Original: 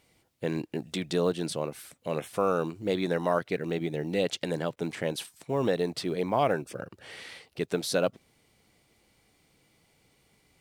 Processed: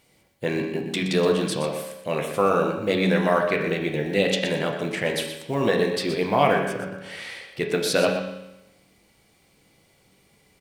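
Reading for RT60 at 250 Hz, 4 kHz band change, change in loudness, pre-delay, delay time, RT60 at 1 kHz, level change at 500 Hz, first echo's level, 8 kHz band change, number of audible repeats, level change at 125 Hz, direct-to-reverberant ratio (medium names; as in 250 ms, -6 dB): 0.95 s, +8.0 dB, +6.5 dB, 7 ms, 122 ms, 0.95 s, +6.0 dB, -9.5 dB, +6.0 dB, 1, +6.0 dB, 1.5 dB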